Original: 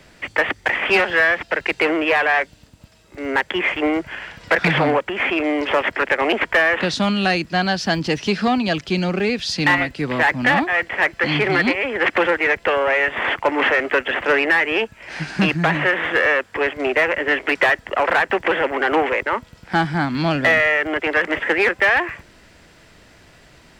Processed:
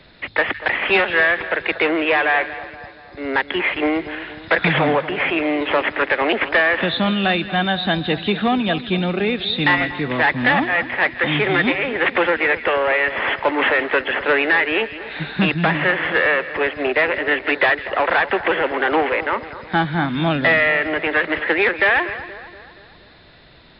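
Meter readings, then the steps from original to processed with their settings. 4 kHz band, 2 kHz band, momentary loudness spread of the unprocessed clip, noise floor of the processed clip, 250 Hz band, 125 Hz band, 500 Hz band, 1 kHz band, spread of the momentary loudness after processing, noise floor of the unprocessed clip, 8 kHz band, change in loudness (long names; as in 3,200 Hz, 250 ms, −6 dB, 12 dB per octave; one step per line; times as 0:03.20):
+1.0 dB, 0.0 dB, 6 LU, −46 dBFS, +0.5 dB, +0.5 dB, 0.0 dB, 0.0 dB, 6 LU, −50 dBFS, below −40 dB, 0.0 dB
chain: hearing-aid frequency compression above 3,400 Hz 4 to 1
echo with a time of its own for lows and highs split 1,600 Hz, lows 237 ms, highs 163 ms, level −14 dB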